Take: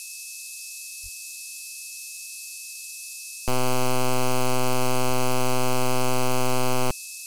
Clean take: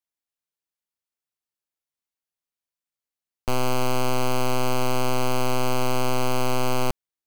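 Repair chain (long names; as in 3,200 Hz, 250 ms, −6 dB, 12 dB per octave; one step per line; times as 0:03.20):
notch filter 2,600 Hz, Q 30
0:01.02–0:01.14: high-pass filter 140 Hz 24 dB per octave
0:05.06–0:05.18: high-pass filter 140 Hz 24 dB per octave
noise reduction from a noise print 30 dB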